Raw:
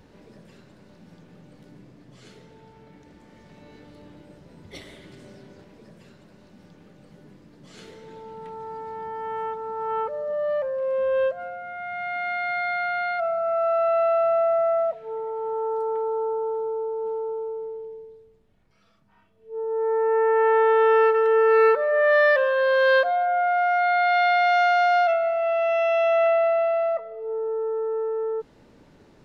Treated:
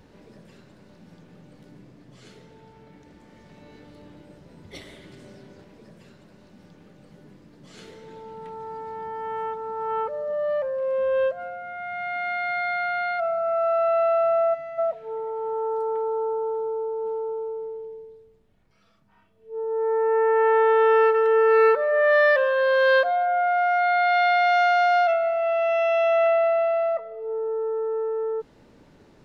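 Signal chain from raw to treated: time-frequency box 14.54–14.79 s, 340–1800 Hz -14 dB

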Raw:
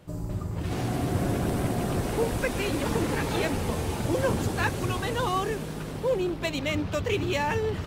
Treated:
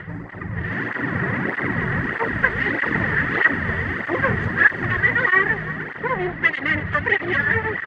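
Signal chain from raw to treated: comb filter that takes the minimum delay 0.64 ms; 0.65–1.62 s: high-pass 120 Hz; upward compressor, threshold -35 dBFS; resonant low-pass 1.9 kHz, resonance Q 12; delay 335 ms -16.5 dB; cancelling through-zero flanger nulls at 1.6 Hz, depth 4 ms; trim +6 dB

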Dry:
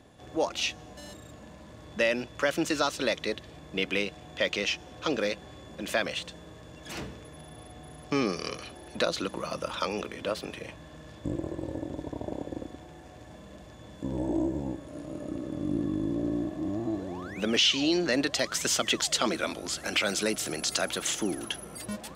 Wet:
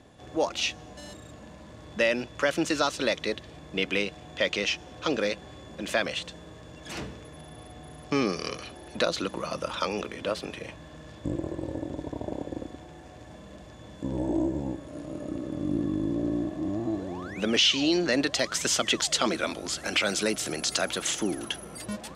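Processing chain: low-pass 11 kHz 12 dB/octave; trim +1.5 dB

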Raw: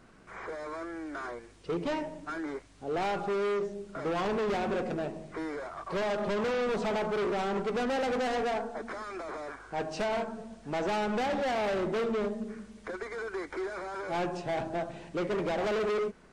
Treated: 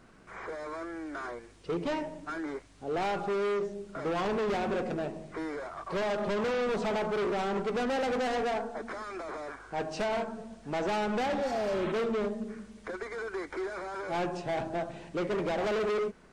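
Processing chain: spectral replace 11.44–11.89 s, 730–4200 Hz

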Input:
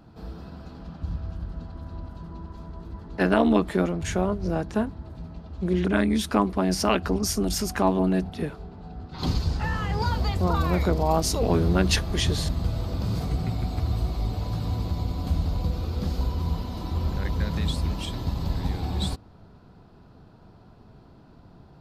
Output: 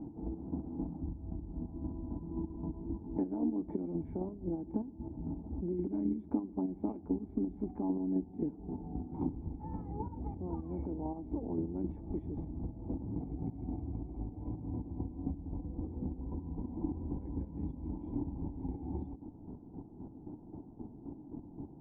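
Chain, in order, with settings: square tremolo 3.8 Hz, depth 60%, duty 30%; compression 16:1, threshold -39 dBFS, peak gain reduction 23.5 dB; cascade formant filter u; on a send: reverberation RT60 3.4 s, pre-delay 3 ms, DRR 22.5 dB; on the sum: trim +16.5 dB

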